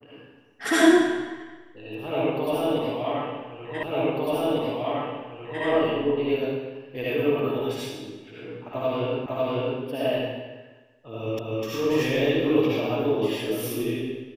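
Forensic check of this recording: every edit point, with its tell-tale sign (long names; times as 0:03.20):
0:03.83: the same again, the last 1.8 s
0:09.26: the same again, the last 0.55 s
0:11.39: the same again, the last 0.25 s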